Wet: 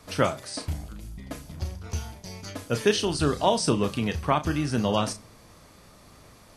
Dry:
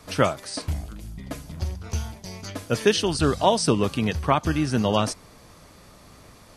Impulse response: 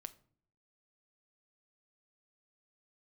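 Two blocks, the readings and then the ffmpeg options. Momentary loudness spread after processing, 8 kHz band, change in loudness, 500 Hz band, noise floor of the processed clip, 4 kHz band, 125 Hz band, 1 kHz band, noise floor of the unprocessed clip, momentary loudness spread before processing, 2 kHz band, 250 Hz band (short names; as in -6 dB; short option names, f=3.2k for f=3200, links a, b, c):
16 LU, -2.5 dB, -2.5 dB, -2.5 dB, -53 dBFS, -2.5 dB, -3.0 dB, -2.5 dB, -50 dBFS, 16 LU, -2.5 dB, -2.5 dB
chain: -filter_complex "[0:a]asplit=2[a][b];[1:a]atrim=start_sample=2205,highshelf=f=8.4k:g=8,adelay=34[c];[b][c]afir=irnorm=-1:irlink=0,volume=-5.5dB[d];[a][d]amix=inputs=2:normalize=0,volume=-3dB"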